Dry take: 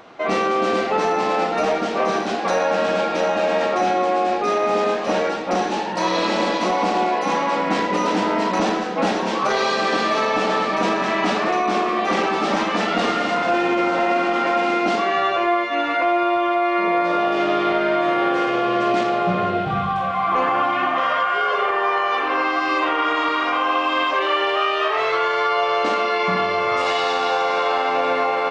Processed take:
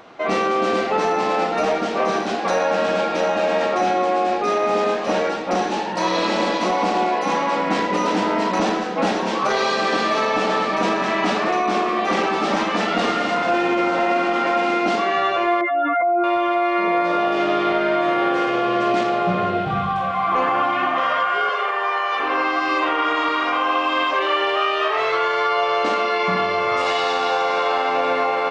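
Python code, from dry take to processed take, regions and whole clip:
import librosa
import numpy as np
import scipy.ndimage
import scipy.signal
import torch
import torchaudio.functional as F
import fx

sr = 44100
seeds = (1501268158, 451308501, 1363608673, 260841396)

y = fx.chain(x, sr, fx.spec_expand(power=2.4),
    fx.env_flatten(amount_pct=50), at=(15.61, 16.24))
y = fx.chain(y, sr, fx.highpass(hz=210.0, slope=24),
    fx.low_shelf(hz=490.0, db=-8.5),
    fx.hum_notches(base_hz=50, count=10), at=(21.49, 22.2))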